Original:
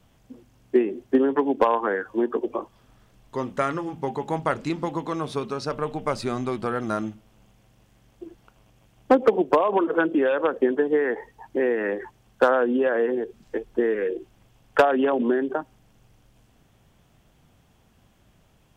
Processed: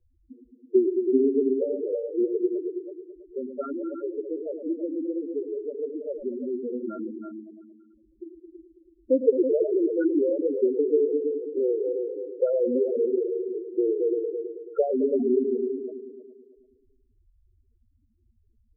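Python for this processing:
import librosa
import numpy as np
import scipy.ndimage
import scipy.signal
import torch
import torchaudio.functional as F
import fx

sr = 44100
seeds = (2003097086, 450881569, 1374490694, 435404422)

y = fx.fixed_phaser(x, sr, hz=370.0, stages=4)
y = fx.echo_heads(y, sr, ms=109, heads='all three', feedback_pct=43, wet_db=-8.5)
y = fx.spec_topn(y, sr, count=4)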